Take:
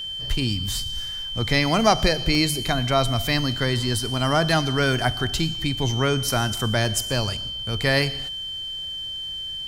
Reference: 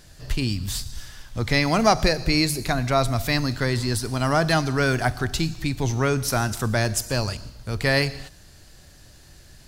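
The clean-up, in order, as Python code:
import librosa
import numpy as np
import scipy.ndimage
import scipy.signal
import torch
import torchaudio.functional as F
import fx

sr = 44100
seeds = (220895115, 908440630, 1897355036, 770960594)

y = fx.notch(x, sr, hz=3100.0, q=30.0)
y = fx.fix_interpolate(y, sr, at_s=(2.35,), length_ms=1.5)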